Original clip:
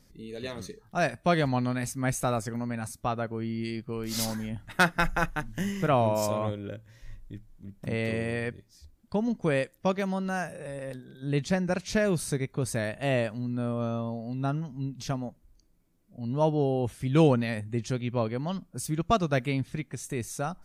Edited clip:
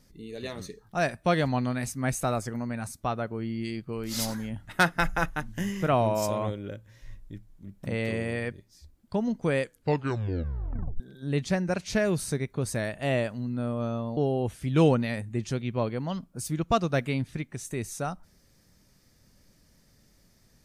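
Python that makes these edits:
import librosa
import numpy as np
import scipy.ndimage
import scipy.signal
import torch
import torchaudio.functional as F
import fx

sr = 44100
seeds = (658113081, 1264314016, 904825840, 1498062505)

y = fx.edit(x, sr, fx.tape_stop(start_s=9.62, length_s=1.38),
    fx.cut(start_s=14.17, length_s=2.39), tone=tone)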